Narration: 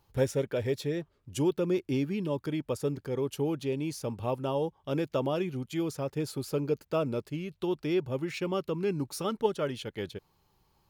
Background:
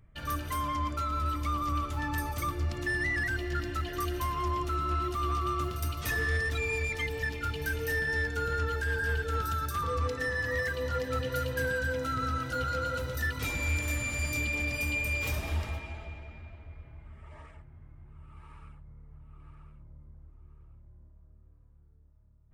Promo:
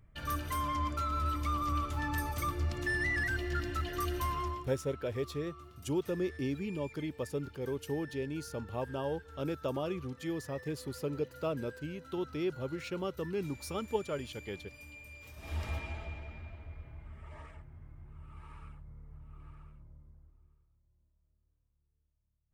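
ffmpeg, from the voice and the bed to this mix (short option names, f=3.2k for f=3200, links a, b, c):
-filter_complex "[0:a]adelay=4500,volume=-5.5dB[a];[1:a]volume=18dB,afade=t=out:st=4.33:d=0.37:silence=0.125893,afade=t=in:st=15.36:d=0.42:silence=0.1,afade=t=out:st=19.42:d=1.25:silence=0.112202[b];[a][b]amix=inputs=2:normalize=0"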